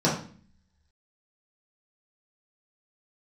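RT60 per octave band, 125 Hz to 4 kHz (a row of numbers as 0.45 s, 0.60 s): 0.75 s, 0.80 s, 0.45 s, 0.40 s, 0.45 s, 0.45 s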